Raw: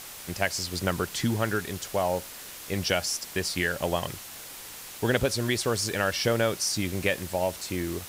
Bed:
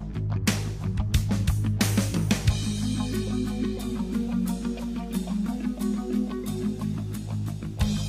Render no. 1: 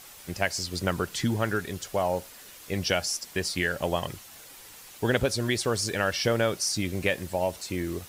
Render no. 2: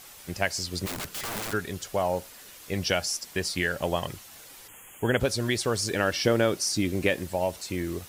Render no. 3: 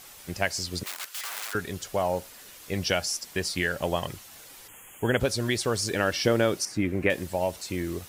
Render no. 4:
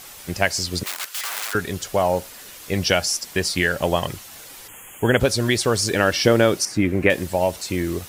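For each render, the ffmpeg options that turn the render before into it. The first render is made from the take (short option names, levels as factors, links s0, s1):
-af "afftdn=nr=7:nf=-43"
-filter_complex "[0:a]asplit=3[s0][s1][s2];[s0]afade=t=out:st=0.85:d=0.02[s3];[s1]aeval=exprs='(mod(26.6*val(0)+1,2)-1)/26.6':c=same,afade=t=in:st=0.85:d=0.02,afade=t=out:st=1.52:d=0.02[s4];[s2]afade=t=in:st=1.52:d=0.02[s5];[s3][s4][s5]amix=inputs=3:normalize=0,asplit=3[s6][s7][s8];[s6]afade=t=out:st=4.67:d=0.02[s9];[s7]asuperstop=centerf=4700:order=20:qfactor=1.5,afade=t=in:st=4.67:d=0.02,afade=t=out:st=5.19:d=0.02[s10];[s8]afade=t=in:st=5.19:d=0.02[s11];[s9][s10][s11]amix=inputs=3:normalize=0,asettb=1/sr,asplit=3[s12][s13][s14];[s12]atrim=end=5.904[s15];[s13]atrim=start=5.9:end=7.24,asetpts=PTS-STARTPTS,afade=t=in:d=0.004:c=qsin,afade=t=out:st=1.336:d=0.004:c=qsin,equalizer=f=310:w=1.5:g=6[s16];[s14]atrim=start=7.236[s17];[s15][s16]acrossfade=d=0.004:c1=hsin:c2=qsin[s18];[s18][s17]acrossfade=d=0.004:c1=qsin:c2=hsin"
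-filter_complex "[0:a]asettb=1/sr,asplit=3[s0][s1][s2];[s0]atrim=end=0.834[s3];[s1]atrim=start=0.83:end=1.55,asetpts=PTS-STARTPTS,afade=t=in:d=0.004:c=qsin,afade=t=out:st=0.716:d=0.004:c=qsin,highpass=1100[s4];[s2]atrim=start=1.546[s5];[s3][s4]acrossfade=d=0.004:c1=hsin:c2=qsin[s6];[s6][s5]acrossfade=d=0.004:c1=qsin:c2=hsin,asettb=1/sr,asplit=3[s7][s8][s9];[s7]atrim=end=6.654[s10];[s8]atrim=start=6.65:end=7.1,asetpts=PTS-STARTPTS,afade=t=in:d=0.004:c=qsin,afade=t=out:st=0.446:d=0.004:c=qsin,highshelf=f=2900:t=q:w=1.5:g=-11[s11];[s9]atrim=start=7.096[s12];[s10][s11]acrossfade=d=0.004:c1=hsin:c2=qsin[s13];[s13][s12]acrossfade=d=0.004:c1=qsin:c2=hsin"
-af "volume=2.24"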